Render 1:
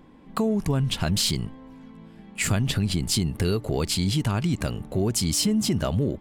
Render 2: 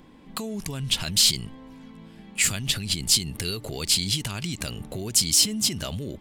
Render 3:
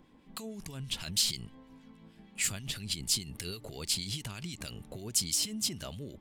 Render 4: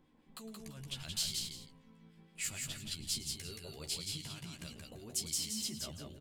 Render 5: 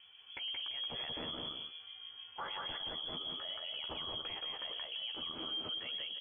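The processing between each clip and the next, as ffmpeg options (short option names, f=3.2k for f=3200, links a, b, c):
-filter_complex "[0:a]acrossover=split=2400[a][b];[a]alimiter=level_in=1dB:limit=-24dB:level=0:latency=1:release=94,volume=-1dB[c];[b]acontrast=70[d];[c][d]amix=inputs=2:normalize=0"
-filter_complex "[0:a]acrossover=split=1600[a][b];[a]aeval=exprs='val(0)*(1-0.5/2+0.5/2*cos(2*PI*6.3*n/s))':c=same[c];[b]aeval=exprs='val(0)*(1-0.5/2-0.5/2*cos(2*PI*6.3*n/s))':c=same[d];[c][d]amix=inputs=2:normalize=0,volume=-7.5dB"
-filter_complex "[0:a]asplit=2[a][b];[b]adelay=13,volume=-5dB[c];[a][c]amix=inputs=2:normalize=0,aecho=1:1:108|175|339:0.158|0.668|0.168,volume=-9dB"
-af "lowpass=f=2.9k:t=q:w=0.5098,lowpass=f=2.9k:t=q:w=0.6013,lowpass=f=2.9k:t=q:w=0.9,lowpass=f=2.9k:t=q:w=2.563,afreqshift=-3400,alimiter=level_in=18.5dB:limit=-24dB:level=0:latency=1:release=53,volume=-18.5dB,volume=9.5dB"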